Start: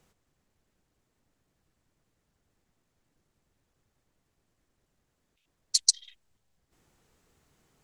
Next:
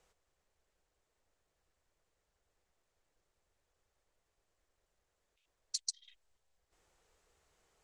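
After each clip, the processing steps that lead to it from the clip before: treble shelf 9.6 kHz -11 dB; compression 4:1, threshold -35 dBFS, peak gain reduction 14.5 dB; graphic EQ 125/250/500/8000 Hz -10/-12/+4/+4 dB; trim -3.5 dB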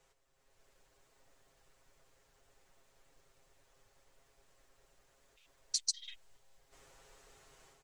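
comb 7.4 ms, depth 76%; level rider gain up to 10.5 dB; peak limiter -19 dBFS, peak gain reduction 10 dB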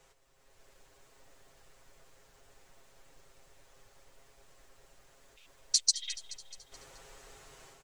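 feedback delay 214 ms, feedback 55%, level -14.5 dB; trim +7.5 dB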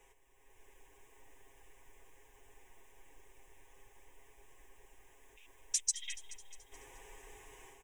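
static phaser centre 900 Hz, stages 8; trim +2 dB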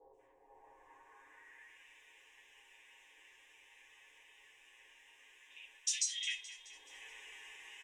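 band-pass sweep 600 Hz -> 2.9 kHz, 0.31–1.78 s; three bands offset in time lows, highs, mids 130/190 ms, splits 1/3.6 kHz; simulated room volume 120 m³, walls furnished, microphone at 2.3 m; trim +9 dB

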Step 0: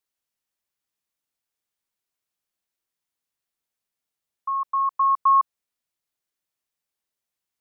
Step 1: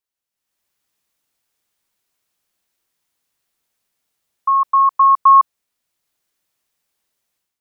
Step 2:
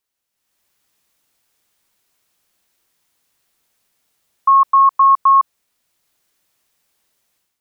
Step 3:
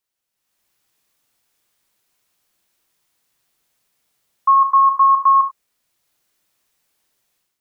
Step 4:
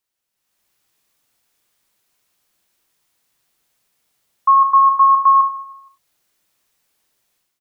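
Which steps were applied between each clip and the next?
level rider gain up to 14 dB; trim -2.5 dB
peak limiter -13.5 dBFS, peak gain reduction 9 dB; trim +7 dB
gated-style reverb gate 110 ms flat, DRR 7.5 dB; trim -2.5 dB
feedback delay 157 ms, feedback 36%, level -17 dB; trim +1 dB

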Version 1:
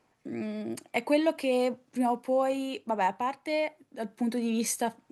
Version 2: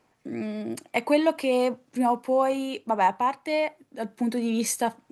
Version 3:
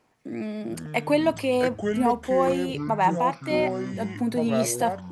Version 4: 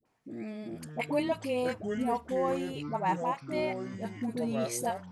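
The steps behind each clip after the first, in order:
dynamic bell 1.1 kHz, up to +5 dB, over -42 dBFS, Q 2.1; trim +3 dB
ever faster or slower copies 273 ms, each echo -6 st, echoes 3, each echo -6 dB
phase dispersion highs, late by 56 ms, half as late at 640 Hz; trim -8 dB

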